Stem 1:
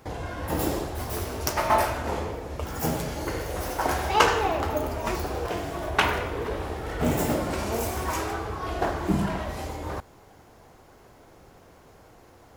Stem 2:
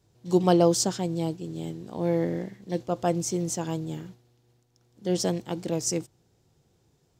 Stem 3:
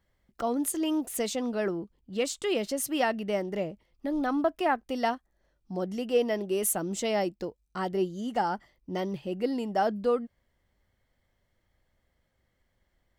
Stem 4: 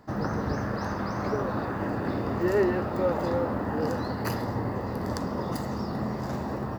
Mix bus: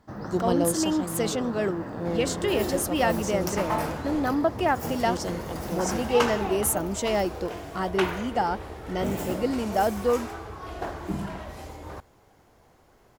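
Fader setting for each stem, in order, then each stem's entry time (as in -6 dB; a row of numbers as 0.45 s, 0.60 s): -6.5 dB, -5.5 dB, +2.5 dB, -7.0 dB; 2.00 s, 0.00 s, 0.00 s, 0.00 s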